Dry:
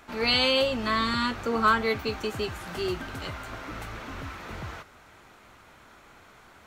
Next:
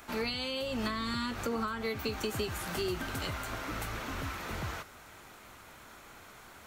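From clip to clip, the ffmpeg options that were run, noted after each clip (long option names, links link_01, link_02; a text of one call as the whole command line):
ffmpeg -i in.wav -filter_complex "[0:a]acompressor=threshold=-28dB:ratio=6,highshelf=frequency=7300:gain=11.5,acrossover=split=340[link_01][link_02];[link_02]acompressor=threshold=-33dB:ratio=6[link_03];[link_01][link_03]amix=inputs=2:normalize=0" out.wav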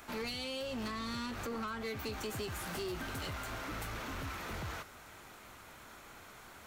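ffmpeg -i in.wav -af "asoftclip=type=tanh:threshold=-34dB,volume=-1dB" out.wav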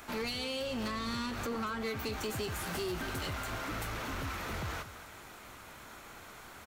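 ffmpeg -i in.wav -af "aecho=1:1:230:0.2,volume=3dB" out.wav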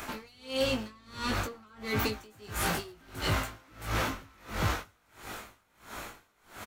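ffmpeg -i in.wav -filter_complex "[0:a]asplit=2[link_01][link_02];[link_02]adelay=19,volume=-4.5dB[link_03];[link_01][link_03]amix=inputs=2:normalize=0,aeval=exprs='val(0)*pow(10,-31*(0.5-0.5*cos(2*PI*1.5*n/s))/20)':channel_layout=same,volume=9dB" out.wav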